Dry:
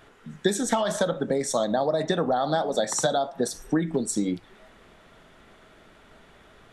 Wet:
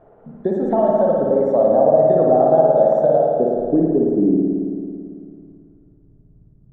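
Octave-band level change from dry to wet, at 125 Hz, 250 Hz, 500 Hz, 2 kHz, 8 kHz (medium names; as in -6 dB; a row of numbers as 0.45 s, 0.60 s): +6.5 dB, +9.5 dB, +12.0 dB, under -10 dB, under -35 dB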